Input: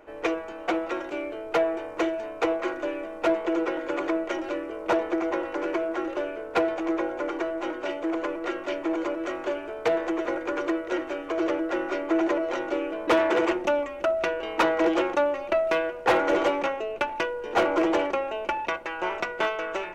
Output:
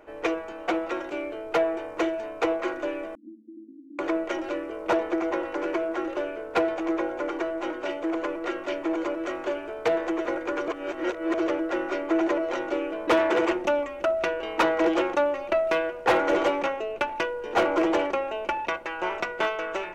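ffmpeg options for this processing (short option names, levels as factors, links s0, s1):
-filter_complex "[0:a]asettb=1/sr,asplit=3[s0][s1][s2];[s0]atrim=end=3.154[s3];[s1]atrim=start=3.15:end=3.99,asetpts=PTS-STARTPTS,afade=t=in:d=0.004:c=qsin,afade=t=out:st=0.836:d=0.004:c=qsin,asuperpass=centerf=250:order=8:qfactor=3[s4];[s2]atrim=start=3.986[s5];[s3][s4]acrossfade=d=0.004:c1=hsin:c2=qsin[s6];[s6][s5]acrossfade=d=0.004:c1=qsin:c2=hsin,asplit=3[s7][s8][s9];[s7]atrim=end=10.682[s10];[s8]atrim=start=10.678:end=11.342,asetpts=PTS-STARTPTS,areverse[s11];[s9]atrim=start=11.338[s12];[s10][s11]acrossfade=d=0.004:c1=hsin:c2=hsin[s13];[s13][s12]acrossfade=d=0.004:c1=hsin:c2=hsin"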